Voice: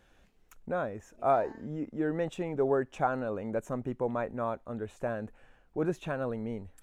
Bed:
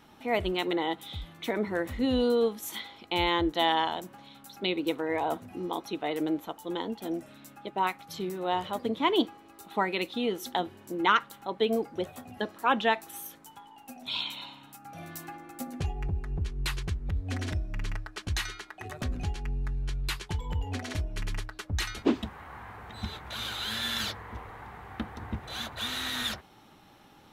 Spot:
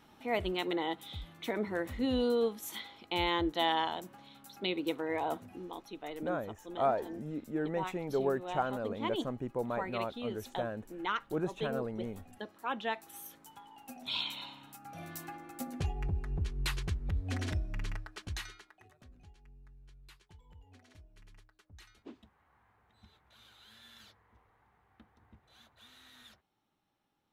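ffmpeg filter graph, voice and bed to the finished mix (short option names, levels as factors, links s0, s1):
-filter_complex "[0:a]adelay=5550,volume=0.668[s0];[1:a]volume=1.58,afade=t=out:st=5.44:d=0.23:silence=0.473151,afade=t=in:st=12.79:d=0.99:silence=0.375837,afade=t=out:st=17.62:d=1.32:silence=0.0749894[s1];[s0][s1]amix=inputs=2:normalize=0"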